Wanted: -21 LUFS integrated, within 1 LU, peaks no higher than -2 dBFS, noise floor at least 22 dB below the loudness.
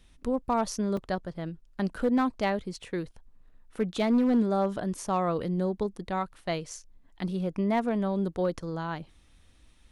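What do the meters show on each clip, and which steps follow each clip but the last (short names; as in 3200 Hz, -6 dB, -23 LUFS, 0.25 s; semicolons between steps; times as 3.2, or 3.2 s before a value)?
clipped 0.4%; flat tops at -18.5 dBFS; dropouts 1; longest dropout 3.4 ms; loudness -29.5 LUFS; peak -18.5 dBFS; loudness target -21.0 LUFS
-> clip repair -18.5 dBFS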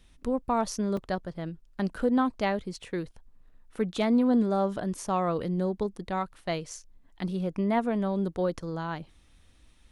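clipped 0.0%; dropouts 1; longest dropout 3.4 ms
-> interpolate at 0.97, 3.4 ms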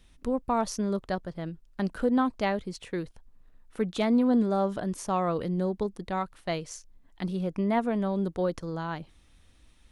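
dropouts 0; loudness -29.5 LUFS; peak -14.0 dBFS; loudness target -21.0 LUFS
-> gain +8.5 dB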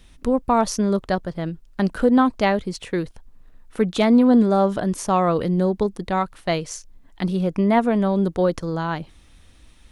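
loudness -21.0 LUFS; peak -5.5 dBFS; noise floor -51 dBFS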